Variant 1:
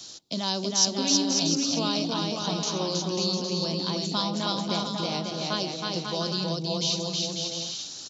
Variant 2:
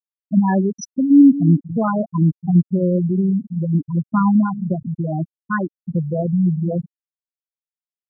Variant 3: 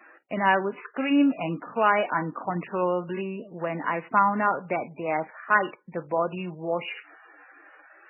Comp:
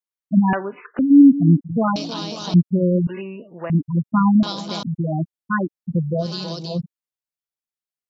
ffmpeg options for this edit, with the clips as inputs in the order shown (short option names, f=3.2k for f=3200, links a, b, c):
-filter_complex "[2:a]asplit=2[a][b];[0:a]asplit=3[c][d][e];[1:a]asplit=6[f][g][h][i][j][k];[f]atrim=end=0.532[l];[a]atrim=start=0.528:end=0.992[m];[g]atrim=start=0.988:end=1.962[n];[c]atrim=start=1.958:end=2.542[o];[h]atrim=start=2.538:end=3.072[p];[b]atrim=start=3.068:end=3.702[q];[i]atrim=start=3.698:end=4.432[r];[d]atrim=start=4.428:end=4.832[s];[j]atrim=start=4.828:end=6.34[t];[e]atrim=start=6.18:end=6.81[u];[k]atrim=start=6.65[v];[l][m]acrossfade=d=0.004:c1=hsin:c2=hsin[w];[w][n]acrossfade=d=0.004:c1=hsin:c2=hsin[x];[x][o]acrossfade=d=0.004:c1=hsin:c2=hsin[y];[y][p]acrossfade=d=0.004:c1=hsin:c2=hsin[z];[z][q]acrossfade=d=0.004:c1=hsin:c2=hsin[aa];[aa][r]acrossfade=d=0.004:c1=hsin:c2=hsin[ab];[ab][s]acrossfade=d=0.004:c1=hsin:c2=hsin[ac];[ac][t]acrossfade=d=0.004:c1=hsin:c2=hsin[ad];[ad][u]acrossfade=d=0.16:c1=tri:c2=tri[ae];[ae][v]acrossfade=d=0.16:c1=tri:c2=tri"